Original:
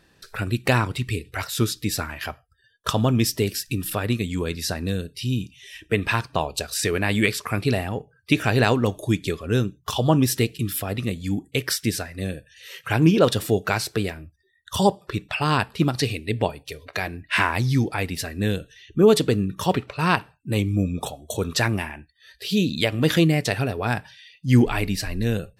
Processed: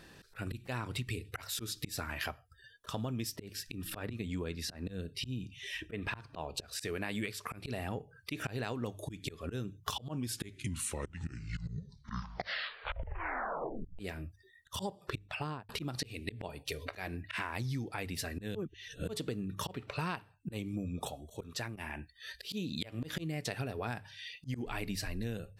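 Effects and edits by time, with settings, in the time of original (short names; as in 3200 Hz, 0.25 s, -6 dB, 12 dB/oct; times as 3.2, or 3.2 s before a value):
3.36–6.8 high shelf 4800 Hz -10.5 dB
10 tape stop 3.99 s
15.16–15.69 studio fade out
18.55–19.09 reverse
21.06–21.76 fade out, to -22.5 dB
whole clip: auto swell 0.429 s; notches 50/100 Hz; compressor 10:1, threshold -38 dBFS; gain +3.5 dB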